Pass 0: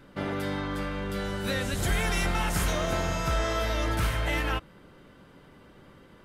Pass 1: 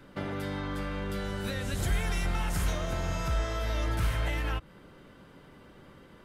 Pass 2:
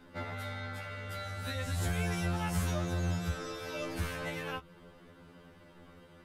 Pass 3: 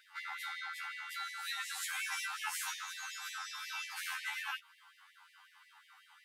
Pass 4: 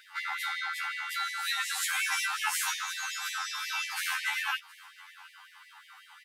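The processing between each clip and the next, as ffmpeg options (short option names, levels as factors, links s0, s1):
-filter_complex "[0:a]acrossover=split=140[s0][s1];[s1]acompressor=threshold=0.0224:ratio=6[s2];[s0][s2]amix=inputs=2:normalize=0"
-af "afftfilt=real='re*2*eq(mod(b,4),0)':imag='im*2*eq(mod(b,4),0)':win_size=2048:overlap=0.75"
-af "afftfilt=real='re*gte(b*sr/1024,740*pow(1800/740,0.5+0.5*sin(2*PI*5.5*pts/sr)))':imag='im*gte(b*sr/1024,740*pow(1800/740,0.5+0.5*sin(2*PI*5.5*pts/sr)))':win_size=1024:overlap=0.75,volume=1.33"
-af "aecho=1:1:717:0.0668,volume=2.66"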